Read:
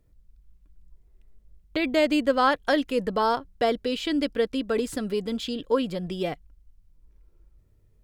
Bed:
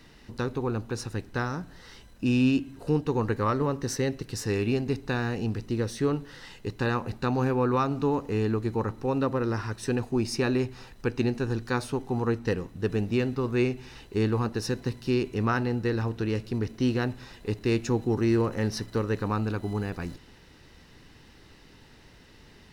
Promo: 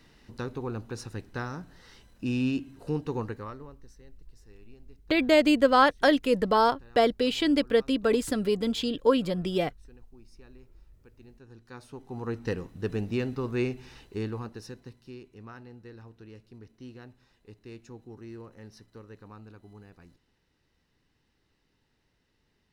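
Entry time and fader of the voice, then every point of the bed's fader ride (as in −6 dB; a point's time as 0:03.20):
3.35 s, +1.5 dB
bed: 0:03.19 −5 dB
0:03.95 −29 dB
0:11.18 −29 dB
0:12.45 −3.5 dB
0:13.92 −3.5 dB
0:15.21 −20 dB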